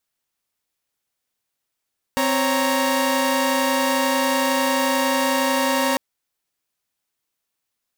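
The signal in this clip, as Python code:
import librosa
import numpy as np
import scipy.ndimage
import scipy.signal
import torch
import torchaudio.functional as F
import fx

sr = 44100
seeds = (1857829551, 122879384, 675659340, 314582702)

y = fx.chord(sr, length_s=3.8, notes=(60, 73, 82), wave='saw', level_db=-20.0)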